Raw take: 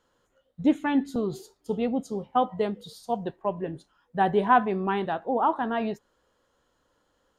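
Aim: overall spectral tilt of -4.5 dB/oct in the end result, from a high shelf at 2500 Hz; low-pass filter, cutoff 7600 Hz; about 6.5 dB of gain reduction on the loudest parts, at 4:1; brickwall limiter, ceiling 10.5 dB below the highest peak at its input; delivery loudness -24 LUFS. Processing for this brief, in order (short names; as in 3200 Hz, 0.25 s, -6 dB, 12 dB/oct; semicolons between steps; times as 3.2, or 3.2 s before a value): LPF 7600 Hz; high shelf 2500 Hz -8.5 dB; compressor 4:1, threshold -23 dBFS; gain +10.5 dB; limiter -14 dBFS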